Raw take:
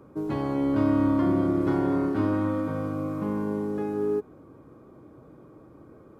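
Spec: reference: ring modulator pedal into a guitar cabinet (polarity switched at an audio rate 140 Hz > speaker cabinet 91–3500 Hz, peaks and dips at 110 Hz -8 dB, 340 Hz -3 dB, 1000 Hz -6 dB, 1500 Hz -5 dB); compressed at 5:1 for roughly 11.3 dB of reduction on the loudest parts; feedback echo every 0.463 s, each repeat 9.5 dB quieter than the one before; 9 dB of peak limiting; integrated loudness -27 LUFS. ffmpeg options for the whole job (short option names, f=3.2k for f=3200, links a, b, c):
-af "acompressor=threshold=-32dB:ratio=5,alimiter=level_in=7.5dB:limit=-24dB:level=0:latency=1,volume=-7.5dB,aecho=1:1:463|926|1389|1852:0.335|0.111|0.0365|0.012,aeval=exprs='val(0)*sgn(sin(2*PI*140*n/s))':c=same,highpass=91,equalizer=f=110:t=q:w=4:g=-8,equalizer=f=340:t=q:w=4:g=-3,equalizer=f=1k:t=q:w=4:g=-6,equalizer=f=1.5k:t=q:w=4:g=-5,lowpass=f=3.5k:w=0.5412,lowpass=f=3.5k:w=1.3066,volume=14dB"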